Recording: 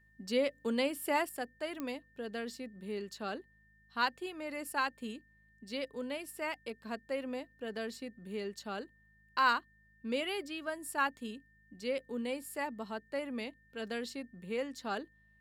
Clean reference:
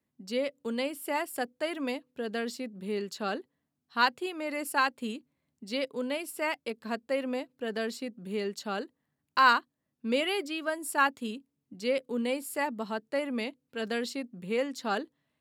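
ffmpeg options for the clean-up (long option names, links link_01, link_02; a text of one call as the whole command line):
ffmpeg -i in.wav -af "adeclick=threshold=4,bandreject=frequency=52.9:width_type=h:width=4,bandreject=frequency=105.8:width_type=h:width=4,bandreject=frequency=158.7:width_type=h:width=4,bandreject=frequency=211.6:width_type=h:width=4,bandreject=frequency=1800:width=30,asetnsamples=nb_out_samples=441:pad=0,asendcmd='1.29 volume volume 6.5dB',volume=0dB" out.wav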